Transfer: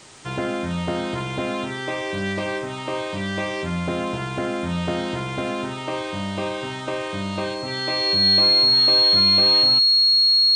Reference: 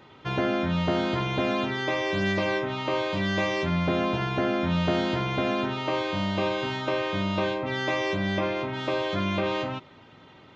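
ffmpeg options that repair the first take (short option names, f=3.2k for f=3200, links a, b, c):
-af "adeclick=t=4,bandreject=f=4.3k:w=30,afwtdn=0.0063"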